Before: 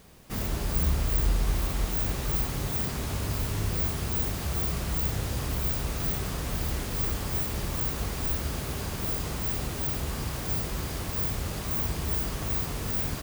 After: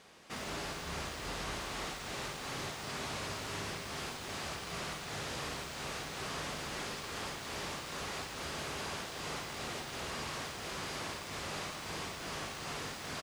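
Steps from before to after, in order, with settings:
high-pass filter 760 Hz 6 dB per octave
gain into a clipping stage and back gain 35.5 dB
high-frequency loss of the air 70 metres
loudspeakers that aren't time-aligned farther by 18 metres −9 dB, 61 metres −10 dB
level +2 dB

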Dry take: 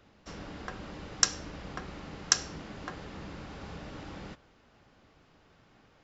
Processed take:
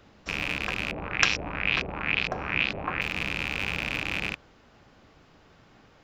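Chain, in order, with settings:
loose part that buzzes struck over −49 dBFS, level −21 dBFS
0:00.91–0:03.01: auto-filter low-pass saw up 2.2 Hz 500–5,400 Hz
level +5.5 dB

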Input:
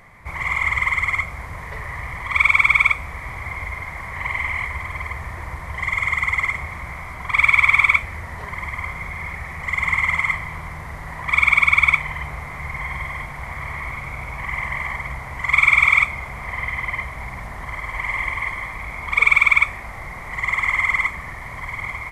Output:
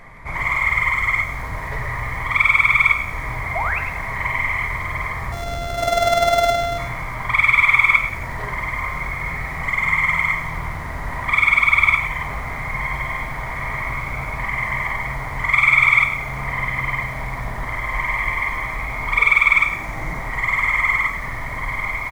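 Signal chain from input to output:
0:05.32–0:06.78: samples sorted by size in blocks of 64 samples
in parallel at −1.5 dB: downward compressor, threshold −27 dBFS, peak gain reduction 16.5 dB
on the sum: high-shelf EQ 5,300 Hz −6.5 dB
notch filter 2,800 Hz, Q 16
0:03.55–0:03.79: sound drawn into the spectrogram rise 620–2,800 Hz −23 dBFS
0:19.55–0:20.19: thirty-one-band graphic EQ 160 Hz +10 dB, 315 Hz +9 dB, 6,300 Hz +6 dB
single-tap delay 106 ms −11.5 dB
on a send at −6.5 dB: convolution reverb, pre-delay 3 ms
on the sum: feedback echo at a low word length 90 ms, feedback 55%, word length 6 bits, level −12.5 dB
level −1 dB

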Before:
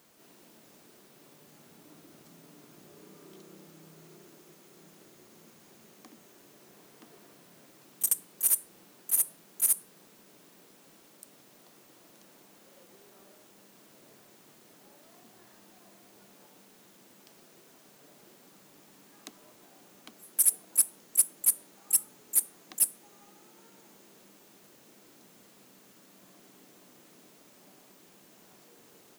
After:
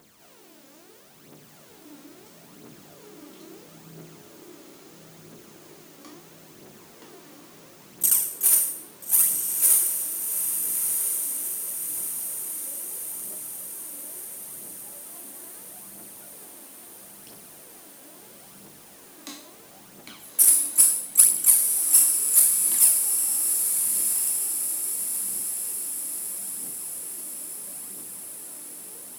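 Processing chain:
peak hold with a decay on every bin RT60 0.62 s
phase shifter 0.75 Hz, delay 3.8 ms, feedback 59%
feedback delay with all-pass diffusion 1,336 ms, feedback 59%, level −4 dB
level +2 dB

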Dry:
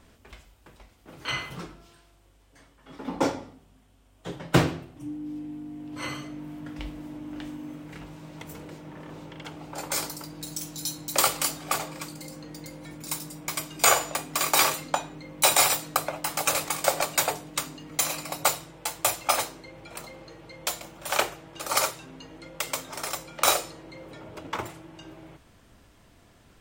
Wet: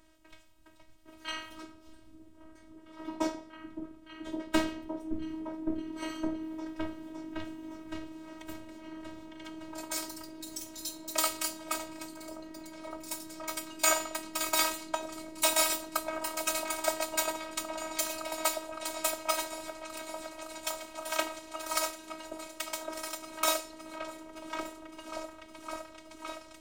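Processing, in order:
echo whose low-pass opens from repeat to repeat 563 ms, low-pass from 200 Hz, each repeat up 1 octave, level 0 dB
phases set to zero 318 Hz
level −4.5 dB

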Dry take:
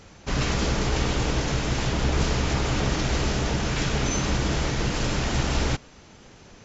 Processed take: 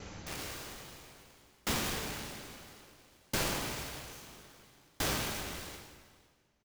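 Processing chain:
downward compressor 2 to 1, threshold −42 dBFS, peak gain reduction 13 dB
wrap-around overflow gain 32 dB
single-tap delay 505 ms −11.5 dB
convolution reverb RT60 3.0 s, pre-delay 10 ms, DRR −4 dB
tremolo with a ramp in dB decaying 0.6 Hz, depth 37 dB
level +1.5 dB

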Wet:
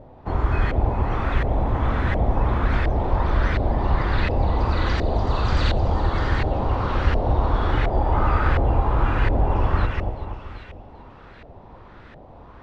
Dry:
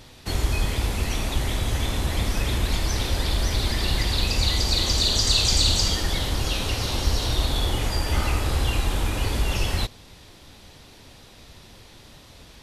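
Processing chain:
pitch vibrato 2.6 Hz 19 cents
echo with a time of its own for lows and highs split 2,200 Hz, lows 241 ms, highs 388 ms, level −5 dB
auto-filter low-pass saw up 1.4 Hz 640–1,800 Hz
level +2 dB

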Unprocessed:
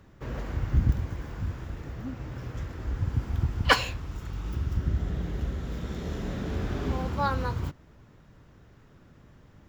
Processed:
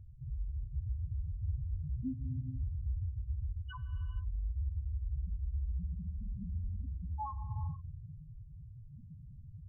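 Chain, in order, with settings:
reversed playback
downward compressor 10 to 1, threshold −39 dBFS, peak gain reduction 24 dB
reversed playback
brickwall limiter −36 dBFS, peak gain reduction 9 dB
spectral peaks only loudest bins 1
reverb whose tail is shaped and stops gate 500 ms flat, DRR 8.5 dB
level +14 dB

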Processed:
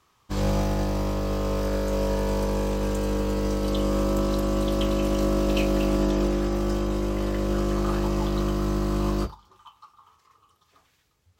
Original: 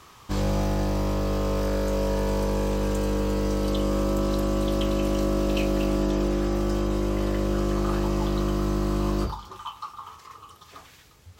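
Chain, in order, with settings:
expander for the loud parts 2.5 to 1, over −34 dBFS
level +3 dB

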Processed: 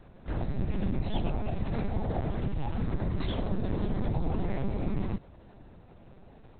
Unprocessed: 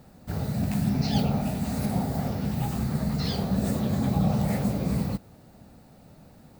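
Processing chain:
downward compressor 2.5 to 1, threshold −26 dBFS, peak gain reduction 5.5 dB
linear-prediction vocoder at 8 kHz pitch kept

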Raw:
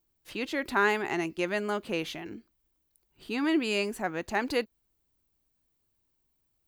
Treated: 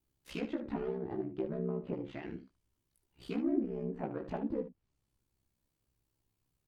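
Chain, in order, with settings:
phase distortion by the signal itself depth 0.32 ms
parametric band 99 Hz +6.5 dB 1.8 octaves
treble cut that deepens with the level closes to 370 Hz, closed at −26.5 dBFS
ring modulation 33 Hz
on a send: ambience of single reflections 18 ms −4.5 dB, 74 ms −11 dB
on the sum: level −1.5 dB

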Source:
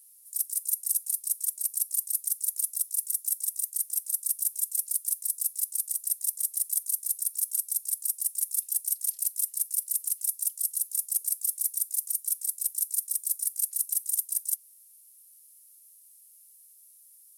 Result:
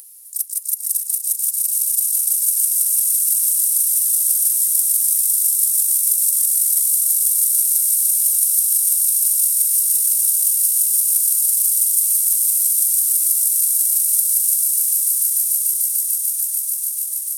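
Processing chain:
upward compression, threshold −41 dBFS
echo that builds up and dies away 147 ms, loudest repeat 8, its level −5 dB
level +6.5 dB

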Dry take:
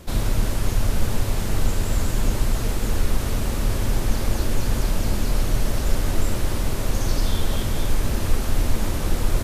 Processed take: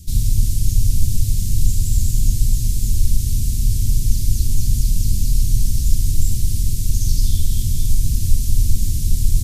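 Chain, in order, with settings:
Chebyshev band-stop filter 120–6,100 Hz, order 2
level +6.5 dB

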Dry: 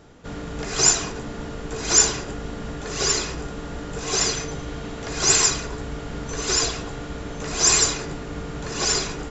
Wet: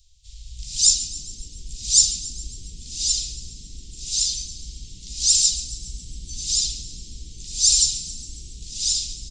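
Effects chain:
pitch-shifted copies added −5 semitones −5 dB, +3 semitones −11 dB
inverse Chebyshev band-stop filter 140–1,600 Hz, stop band 50 dB
echo with shifted repeats 138 ms, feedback 62%, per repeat +64 Hz, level −15 dB

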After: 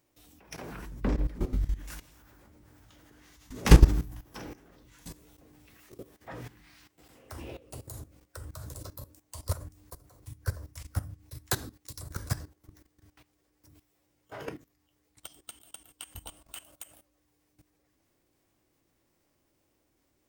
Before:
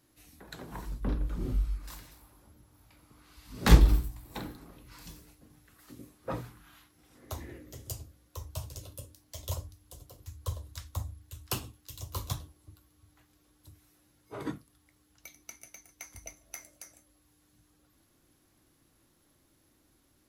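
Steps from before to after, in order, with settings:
formants moved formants +6 semitones
output level in coarse steps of 16 dB
level +6.5 dB

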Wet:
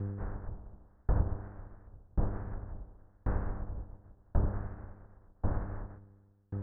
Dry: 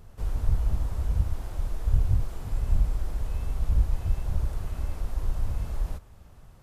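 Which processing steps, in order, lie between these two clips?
compressing power law on the bin magnitudes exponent 0.68
treble cut that deepens with the level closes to 860 Hz, closed at −19.5 dBFS
elliptic low-pass filter 1,700 Hz, stop band 60 dB
feedback delay with all-pass diffusion 461 ms, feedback 54%, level −14 dB
hum with harmonics 100 Hz, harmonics 5, −34 dBFS −8 dB per octave
tremolo with a ramp in dB decaying 0.92 Hz, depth 39 dB

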